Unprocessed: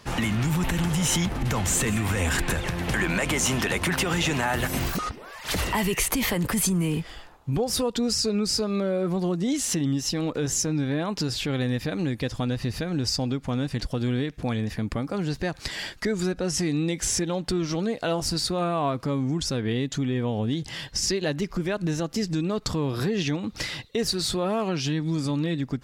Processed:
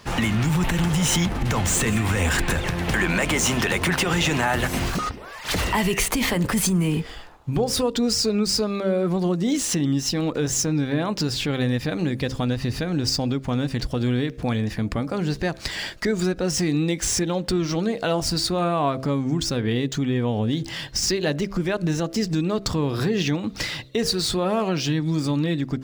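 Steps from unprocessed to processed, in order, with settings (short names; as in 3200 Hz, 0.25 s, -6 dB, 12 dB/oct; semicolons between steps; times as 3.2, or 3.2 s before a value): median filter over 3 samples; de-hum 66.09 Hz, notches 10; gain +3.5 dB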